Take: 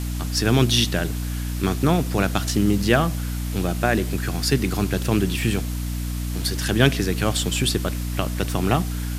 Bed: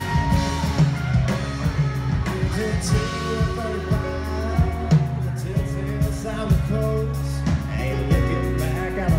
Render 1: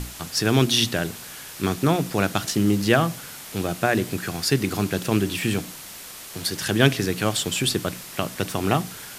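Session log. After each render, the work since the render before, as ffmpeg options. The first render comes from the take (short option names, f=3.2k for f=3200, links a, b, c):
-af "bandreject=f=60:t=h:w=6,bandreject=f=120:t=h:w=6,bandreject=f=180:t=h:w=6,bandreject=f=240:t=h:w=6,bandreject=f=300:t=h:w=6"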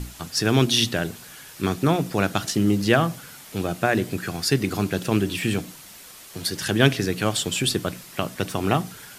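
-af "afftdn=nr=6:nf=-40"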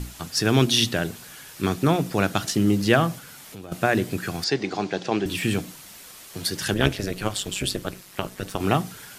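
-filter_complex "[0:a]asettb=1/sr,asplit=3[a][b][c];[a]atrim=end=3.184[d];[b]atrim=start=3.18:end=3.72,asetpts=PTS-STARTPTS,afade=t=in:d=0.004:c=qsin,afade=t=out:st=0.536:d=0.004:c=qsin,acompressor=threshold=-39dB:ratio=3:attack=3.2:release=140:knee=1:detection=peak[e];[c]atrim=start=3.716[f];[d][e]acrossfade=d=0.004:c1=hsin:c2=qsin[g];[g][f]acrossfade=d=0.004:c1=qsin:c2=hsin,asettb=1/sr,asplit=3[h][i][j];[h]atrim=end=4.444[k];[i]atrim=start=4.44:end=5.26,asetpts=PTS-STARTPTS,afade=t=in:d=0.004:c=qsin,afade=t=out:st=0.816:d=0.004:c=qsin,highpass=230,equalizer=f=250:t=q:w=4:g=-5,equalizer=f=780:t=q:w=4:g=7,equalizer=f=1.3k:t=q:w=4:g=-4,equalizer=f=2.8k:t=q:w=4:g=-3,lowpass=f=6k:w=0.5412,lowpass=f=6k:w=1.3066[l];[j]atrim=start=5.256[m];[k][l]acrossfade=d=0.004:c1=hsin:c2=qsin[n];[n][m]acrossfade=d=0.004:c1=qsin:c2=hsin,asettb=1/sr,asplit=3[o][p][q];[o]atrim=end=6.744[r];[p]atrim=start=6.74:end=8.6,asetpts=PTS-STARTPTS,afade=t=in:d=0.004:c=qsin,afade=t=out:st=1.856:d=0.004:c=qsin,tremolo=f=200:d=0.857[s];[q]atrim=start=8.596[t];[r][s]acrossfade=d=0.004:c1=hsin:c2=qsin[u];[u][t]acrossfade=d=0.004:c1=qsin:c2=hsin"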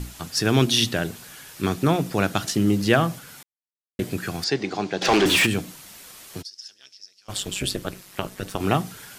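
-filter_complex "[0:a]asplit=3[a][b][c];[a]afade=t=out:st=5.01:d=0.02[d];[b]asplit=2[e][f];[f]highpass=f=720:p=1,volume=26dB,asoftclip=type=tanh:threshold=-9.5dB[g];[e][g]amix=inputs=2:normalize=0,lowpass=f=5.6k:p=1,volume=-6dB,afade=t=in:st=5.01:d=0.02,afade=t=out:st=5.45:d=0.02[h];[c]afade=t=in:st=5.45:d=0.02[i];[d][h][i]amix=inputs=3:normalize=0,asplit=3[j][k][l];[j]afade=t=out:st=6.41:d=0.02[m];[k]bandpass=f=5.3k:t=q:w=12,afade=t=in:st=6.41:d=0.02,afade=t=out:st=7.28:d=0.02[n];[l]afade=t=in:st=7.28:d=0.02[o];[m][n][o]amix=inputs=3:normalize=0,asplit=3[p][q][r];[p]atrim=end=3.43,asetpts=PTS-STARTPTS,afade=t=out:st=3.426:d=0.004:c=hsin[s];[q]atrim=start=3.43:end=3.99,asetpts=PTS-STARTPTS,volume=0[t];[r]atrim=start=3.99,asetpts=PTS-STARTPTS,afade=t=in:d=0.004:c=hsin[u];[s][t][u]concat=n=3:v=0:a=1"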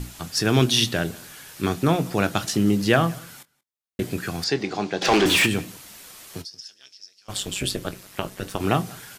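-filter_complex "[0:a]asplit=2[a][b];[b]adelay=24,volume=-14dB[c];[a][c]amix=inputs=2:normalize=0,asplit=2[d][e];[e]adelay=180.8,volume=-24dB,highshelf=f=4k:g=-4.07[f];[d][f]amix=inputs=2:normalize=0"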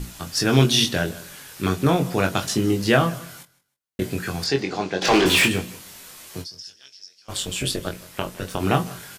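-filter_complex "[0:a]asplit=2[a][b];[b]adelay=22,volume=-4.5dB[c];[a][c]amix=inputs=2:normalize=0,aecho=1:1:157|314:0.0794|0.0214"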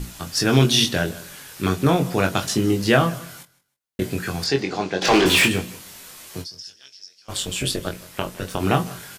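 -af "volume=1dB,alimiter=limit=-3dB:level=0:latency=1"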